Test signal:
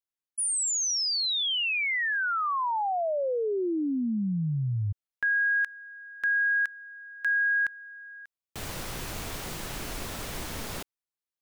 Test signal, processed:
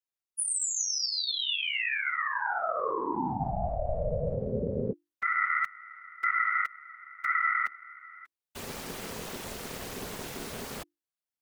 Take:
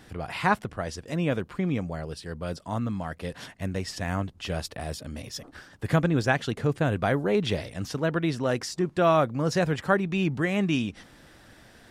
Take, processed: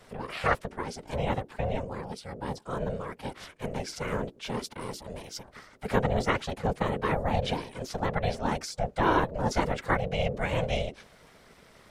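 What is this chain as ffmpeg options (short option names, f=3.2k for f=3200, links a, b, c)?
-af "afftfilt=real='hypot(re,im)*cos(2*PI*random(0))':imag='hypot(re,im)*sin(2*PI*random(1))':win_size=512:overlap=0.75,afreqshift=25,aeval=exprs='val(0)*sin(2*PI*320*n/s)':c=same,volume=6dB"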